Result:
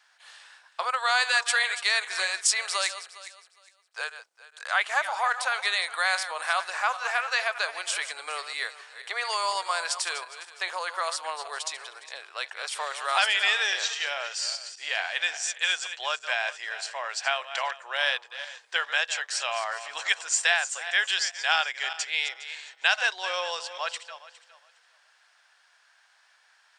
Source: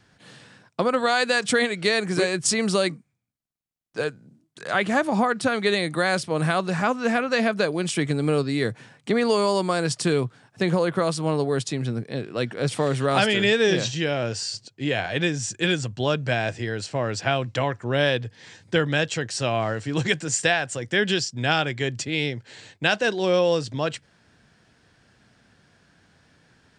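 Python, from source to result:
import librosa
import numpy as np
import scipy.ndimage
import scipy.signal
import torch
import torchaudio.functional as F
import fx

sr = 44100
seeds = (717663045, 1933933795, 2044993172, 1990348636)

y = fx.reverse_delay_fb(x, sr, ms=205, feedback_pct=45, wet_db=-11.5)
y = scipy.signal.sosfilt(scipy.signal.cheby2(4, 60, 240.0, 'highpass', fs=sr, output='sos'), y)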